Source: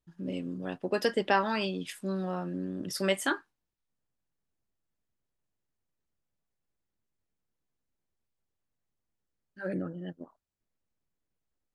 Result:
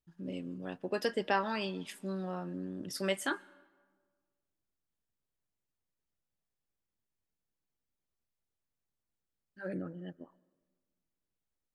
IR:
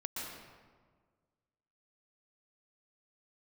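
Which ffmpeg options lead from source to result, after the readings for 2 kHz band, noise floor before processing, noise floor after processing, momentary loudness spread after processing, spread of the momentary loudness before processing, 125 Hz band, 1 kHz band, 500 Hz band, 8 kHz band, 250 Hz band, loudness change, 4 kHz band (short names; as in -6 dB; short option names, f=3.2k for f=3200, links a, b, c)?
-4.5 dB, -85 dBFS, under -85 dBFS, 13 LU, 13 LU, -5.0 dB, -4.5 dB, -4.5 dB, -4.5 dB, -5.0 dB, -4.5 dB, -4.5 dB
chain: -filter_complex "[0:a]asplit=2[a][b];[1:a]atrim=start_sample=2205,lowshelf=f=200:g=-10[c];[b][c]afir=irnorm=-1:irlink=0,volume=-23.5dB[d];[a][d]amix=inputs=2:normalize=0,volume=-5dB"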